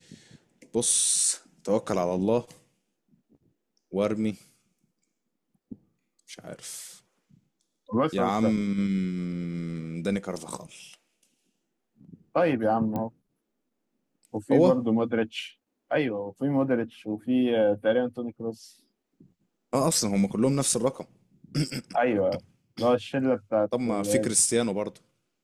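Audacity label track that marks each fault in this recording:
12.960000	12.960000	pop -19 dBFS

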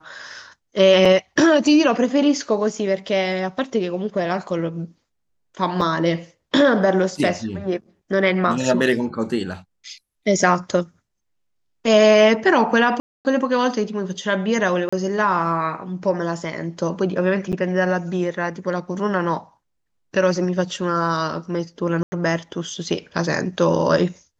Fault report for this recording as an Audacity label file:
1.050000	1.050000	gap 4.2 ms
5.810000	5.810000	gap 4.9 ms
13.000000	13.250000	gap 0.249 s
14.890000	14.930000	gap 35 ms
17.520000	17.530000	gap 8 ms
22.030000	22.120000	gap 90 ms

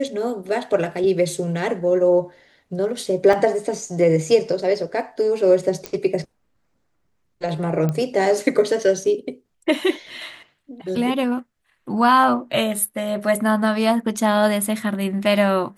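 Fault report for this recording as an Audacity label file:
3.330000	3.330000	gap 2.5 ms
5.860000	5.860000	pop -11 dBFS
7.890000	7.890000	pop -12 dBFS

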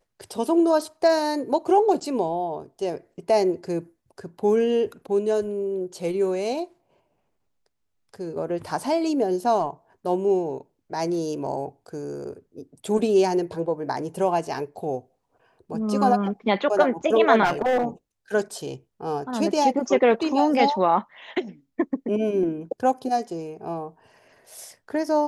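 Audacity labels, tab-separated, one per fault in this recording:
17.440000	17.850000	clipped -17.5 dBFS

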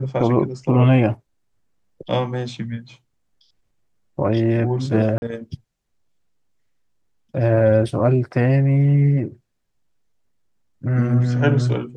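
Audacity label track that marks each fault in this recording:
5.180000	5.220000	gap 41 ms

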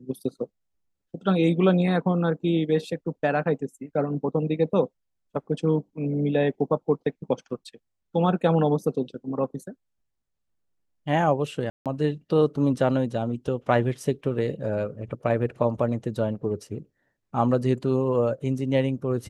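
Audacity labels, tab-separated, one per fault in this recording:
11.700000	11.860000	gap 0.157 s

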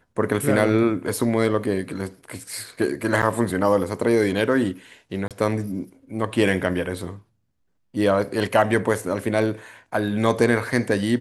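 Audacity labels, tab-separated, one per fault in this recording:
3.220000	3.230000	gap 8 ms
5.280000	5.310000	gap 27 ms

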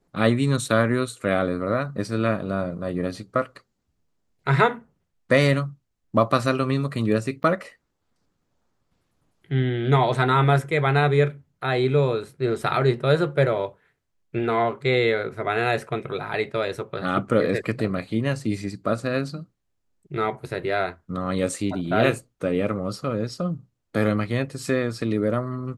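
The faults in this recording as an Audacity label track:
7.430000	7.440000	gap 9.8 ms

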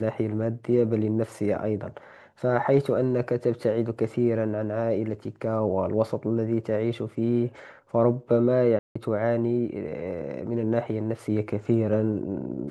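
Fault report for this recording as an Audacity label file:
8.790000	8.960000	gap 0.165 s

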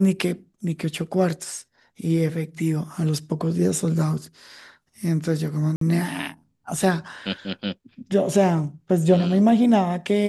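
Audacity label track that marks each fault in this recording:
5.760000	5.810000	gap 53 ms

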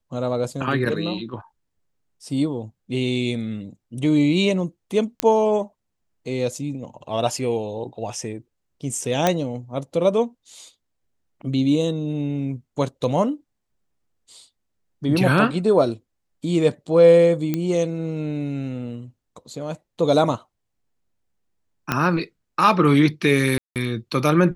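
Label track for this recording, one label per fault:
5.200000	5.200000	pop -3 dBFS
9.270000	9.270000	pop -4 dBFS
17.540000	17.540000	pop -10 dBFS
21.920000	21.920000	pop -6 dBFS
23.580000	23.760000	gap 0.178 s

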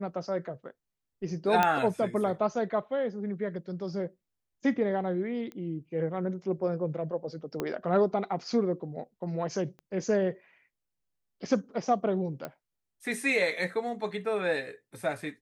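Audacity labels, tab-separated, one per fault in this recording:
1.630000	1.630000	pop -10 dBFS
5.520000	5.520000	pop -28 dBFS
7.600000	7.600000	pop -17 dBFS
9.790000	9.790000	pop -36 dBFS
12.450000	12.450000	pop -21 dBFS

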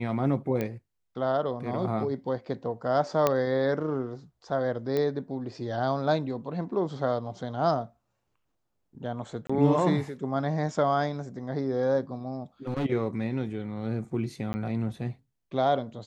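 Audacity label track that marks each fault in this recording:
0.610000	0.610000	pop -17 dBFS
3.270000	3.270000	pop -9 dBFS
4.970000	4.970000	pop -17 dBFS
9.470000	9.490000	gap 25 ms
12.670000	12.860000	clipped -25 dBFS
14.530000	14.540000	gap 10 ms

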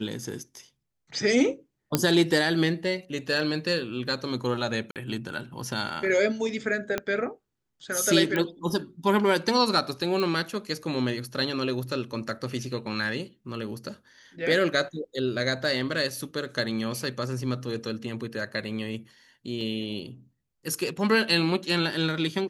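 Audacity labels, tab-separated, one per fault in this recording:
1.950000	1.950000	pop -5 dBFS
4.910000	4.960000	gap 48 ms
6.980000	6.980000	pop -12 dBFS
8.360000	8.360000	pop -14 dBFS
10.200000	10.200000	pop -17 dBFS
19.610000	19.610000	gap 2.4 ms

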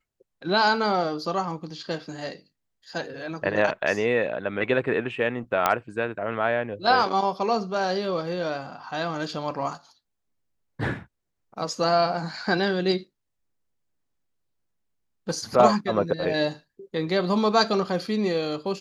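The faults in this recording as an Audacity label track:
5.660000	5.660000	pop -6 dBFS

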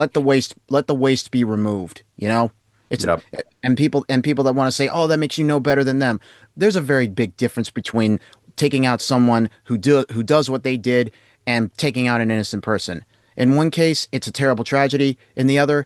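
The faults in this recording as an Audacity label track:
5.700000	5.700000	gap 2.2 ms

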